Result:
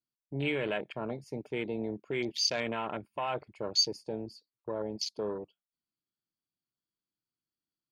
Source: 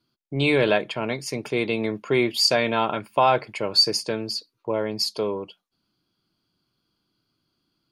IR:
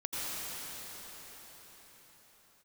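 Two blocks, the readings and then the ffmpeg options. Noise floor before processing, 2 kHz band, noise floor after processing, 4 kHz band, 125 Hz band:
-77 dBFS, -11.5 dB, under -85 dBFS, -10.0 dB, -10.5 dB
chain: -filter_complex "[0:a]afwtdn=0.0447,acrossover=split=1900[a][b];[a]alimiter=limit=-17.5dB:level=0:latency=1:release=22[c];[c][b]amix=inputs=2:normalize=0,volume=-8dB"

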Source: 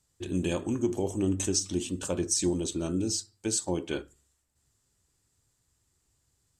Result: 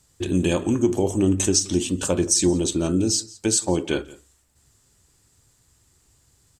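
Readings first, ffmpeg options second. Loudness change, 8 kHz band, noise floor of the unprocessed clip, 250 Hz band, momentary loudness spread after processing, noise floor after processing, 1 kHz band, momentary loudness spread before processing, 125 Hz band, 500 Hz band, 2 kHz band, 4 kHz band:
+8.5 dB, +8.5 dB, -75 dBFS, +8.5 dB, 5 LU, -62 dBFS, +8.5 dB, 6 LU, +8.5 dB, +8.5 dB, +8.5 dB, +8.5 dB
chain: -filter_complex "[0:a]aecho=1:1:172:0.0668,asplit=2[a][b];[b]acompressor=threshold=-39dB:ratio=6,volume=-0.5dB[c];[a][c]amix=inputs=2:normalize=0,volume=6.5dB"

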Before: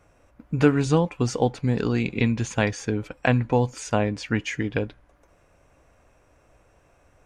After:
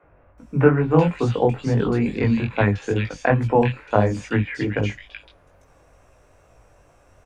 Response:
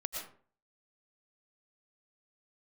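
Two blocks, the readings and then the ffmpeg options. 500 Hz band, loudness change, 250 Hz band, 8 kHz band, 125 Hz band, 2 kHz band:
+4.5 dB, +3.5 dB, +2.5 dB, n/a, +4.0 dB, +2.0 dB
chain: -filter_complex "[0:a]flanger=delay=18:depth=4.6:speed=2.3,acrossover=split=3100[a][b];[b]acompressor=threshold=-56dB:ratio=4:attack=1:release=60[c];[a][c]amix=inputs=2:normalize=0,acrossover=split=250|2300[d][e][f];[d]adelay=30[g];[f]adelay=380[h];[g][e][h]amix=inputs=3:normalize=0,volume=8dB"

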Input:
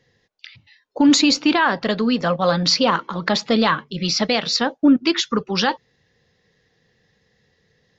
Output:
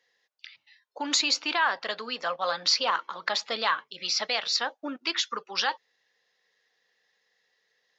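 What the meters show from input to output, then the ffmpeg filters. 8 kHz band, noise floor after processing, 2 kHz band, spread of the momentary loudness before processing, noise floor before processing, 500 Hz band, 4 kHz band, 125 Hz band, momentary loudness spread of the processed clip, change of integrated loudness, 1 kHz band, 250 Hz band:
n/a, -75 dBFS, -5.5 dB, 7 LU, -66 dBFS, -13.0 dB, -5.5 dB, under -30 dB, 9 LU, -9.0 dB, -7.0 dB, -23.5 dB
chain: -af "highpass=770,volume=-5.5dB"

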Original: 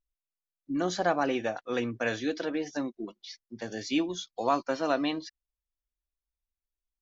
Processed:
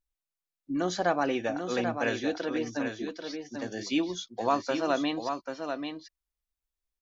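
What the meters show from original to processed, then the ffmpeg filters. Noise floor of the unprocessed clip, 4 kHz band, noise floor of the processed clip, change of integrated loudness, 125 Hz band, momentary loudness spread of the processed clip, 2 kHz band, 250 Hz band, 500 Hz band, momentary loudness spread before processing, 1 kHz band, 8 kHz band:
under -85 dBFS, +1.0 dB, under -85 dBFS, 0.0 dB, +1.0 dB, 9 LU, +1.0 dB, +1.0 dB, +1.0 dB, 13 LU, +1.0 dB, n/a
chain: -af "aecho=1:1:789:0.473"

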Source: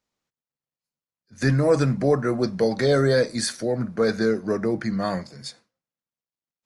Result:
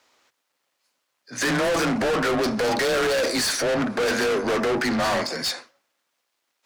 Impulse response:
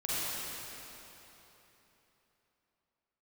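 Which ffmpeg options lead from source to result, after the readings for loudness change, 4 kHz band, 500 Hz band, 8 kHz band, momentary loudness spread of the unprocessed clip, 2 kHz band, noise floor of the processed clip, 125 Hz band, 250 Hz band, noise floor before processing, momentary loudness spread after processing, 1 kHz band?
0.0 dB, +7.0 dB, -1.0 dB, +6.0 dB, 8 LU, +6.5 dB, -77 dBFS, -10.0 dB, -1.5 dB, under -85 dBFS, 5 LU, +6.0 dB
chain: -filter_complex "[0:a]afreqshift=27,equalizer=f=180:t=o:w=0.51:g=-12,asplit=2[a][b];[b]highpass=f=720:p=1,volume=30dB,asoftclip=type=tanh:threshold=-9dB[c];[a][c]amix=inputs=2:normalize=0,lowpass=f=4k:p=1,volume=-6dB,asoftclip=type=tanh:threshold=-20.5dB"

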